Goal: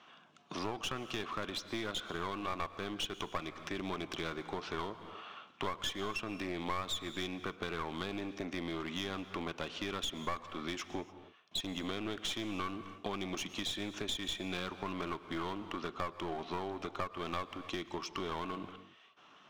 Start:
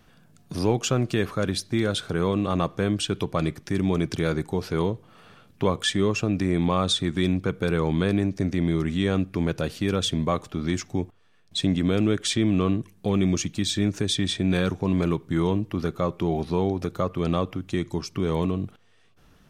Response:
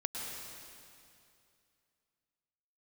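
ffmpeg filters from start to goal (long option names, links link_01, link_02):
-filter_complex "[0:a]highpass=450,equalizer=frequency=490:width_type=q:width=4:gain=-8,equalizer=frequency=1100:width_type=q:width=4:gain=7,equalizer=frequency=1700:width_type=q:width=4:gain=-4,equalizer=frequency=3000:width_type=q:width=4:gain=5,equalizer=frequency=4700:width_type=q:width=4:gain=-9,lowpass=frequency=5400:width=0.5412,lowpass=frequency=5400:width=1.3066,aeval=exprs='clip(val(0),-1,0.02)':channel_layout=same,asplit=2[link_01][link_02];[1:a]atrim=start_sample=2205,afade=type=out:start_time=0.35:duration=0.01,atrim=end_sample=15876[link_03];[link_02][link_03]afir=irnorm=-1:irlink=0,volume=-13.5dB[link_04];[link_01][link_04]amix=inputs=2:normalize=0,acompressor=threshold=-38dB:ratio=3,volume=1dB"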